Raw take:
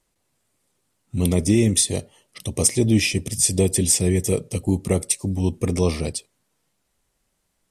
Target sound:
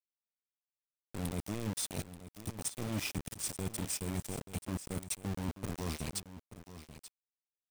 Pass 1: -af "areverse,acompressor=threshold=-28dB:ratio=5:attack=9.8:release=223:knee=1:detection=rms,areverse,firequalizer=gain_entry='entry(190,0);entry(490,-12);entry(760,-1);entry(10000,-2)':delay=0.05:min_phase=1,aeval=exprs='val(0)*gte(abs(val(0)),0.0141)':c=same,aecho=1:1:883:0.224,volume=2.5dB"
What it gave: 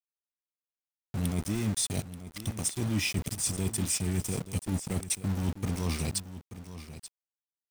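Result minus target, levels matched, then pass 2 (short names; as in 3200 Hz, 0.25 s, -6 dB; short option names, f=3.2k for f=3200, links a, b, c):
compressor: peak gain reduction -6.5 dB
-af "areverse,acompressor=threshold=-36dB:ratio=5:attack=9.8:release=223:knee=1:detection=rms,areverse,firequalizer=gain_entry='entry(190,0);entry(490,-12);entry(760,-1);entry(10000,-2)':delay=0.05:min_phase=1,aeval=exprs='val(0)*gte(abs(val(0)),0.0141)':c=same,aecho=1:1:883:0.224,volume=2.5dB"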